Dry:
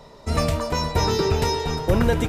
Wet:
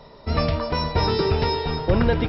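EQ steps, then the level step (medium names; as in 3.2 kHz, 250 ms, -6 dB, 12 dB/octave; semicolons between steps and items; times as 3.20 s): brick-wall FIR low-pass 5.6 kHz; 0.0 dB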